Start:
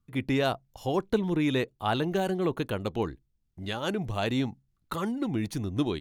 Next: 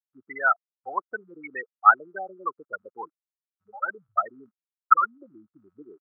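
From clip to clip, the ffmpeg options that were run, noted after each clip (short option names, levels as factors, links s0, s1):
-af "adynamicsmooth=sensitivity=3.5:basefreq=5600,afftfilt=real='re*gte(hypot(re,im),0.112)':imag='im*gte(hypot(re,im),0.112)':win_size=1024:overlap=0.75,highpass=f=1300:t=q:w=9.7,volume=1.88"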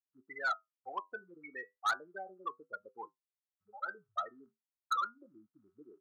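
-af "flanger=delay=8.7:depth=2.8:regen=-65:speed=0.34:shape=triangular,asoftclip=type=tanh:threshold=0.0841,volume=0.562"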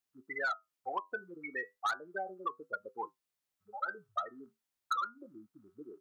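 -af "acompressor=threshold=0.0112:ratio=5,volume=2.24"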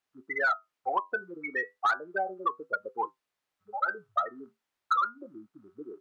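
-filter_complex "[0:a]asplit=2[s0][s1];[s1]highpass=f=720:p=1,volume=2.24,asoftclip=type=tanh:threshold=0.075[s2];[s0][s2]amix=inputs=2:normalize=0,lowpass=f=1600:p=1,volume=0.501,volume=2.51"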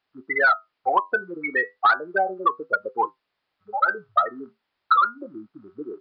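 -af "aresample=11025,aresample=44100,volume=2.66"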